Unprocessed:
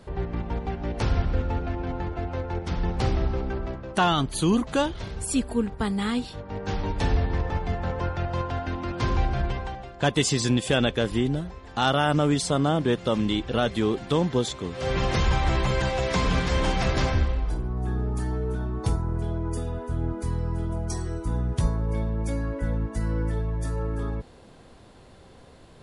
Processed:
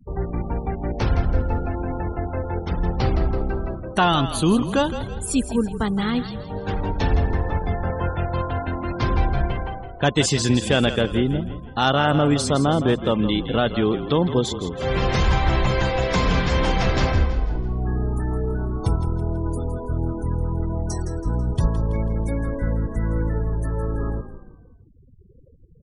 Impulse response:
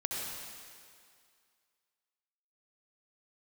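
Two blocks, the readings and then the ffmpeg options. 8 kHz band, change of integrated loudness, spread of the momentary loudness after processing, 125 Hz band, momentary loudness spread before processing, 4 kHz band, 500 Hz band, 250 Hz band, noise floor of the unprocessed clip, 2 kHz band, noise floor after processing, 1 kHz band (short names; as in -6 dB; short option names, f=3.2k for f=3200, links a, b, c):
+2.0 dB, +3.5 dB, 8 LU, +4.0 dB, 8 LU, +3.0 dB, +4.0 dB, +4.0 dB, -50 dBFS, +3.5 dB, -47 dBFS, +3.5 dB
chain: -filter_complex "[0:a]afftfilt=real='re*gte(hypot(re,im),0.0158)':imag='im*gte(hypot(re,im),0.0158)':win_size=1024:overlap=0.75,highshelf=f=9.7k:g=-2.5,asplit=5[a][b][c][d][e];[b]adelay=164,afreqshift=-36,volume=-11dB[f];[c]adelay=328,afreqshift=-72,volume=-18.5dB[g];[d]adelay=492,afreqshift=-108,volume=-26.1dB[h];[e]adelay=656,afreqshift=-144,volume=-33.6dB[i];[a][f][g][h][i]amix=inputs=5:normalize=0,volume=3.5dB"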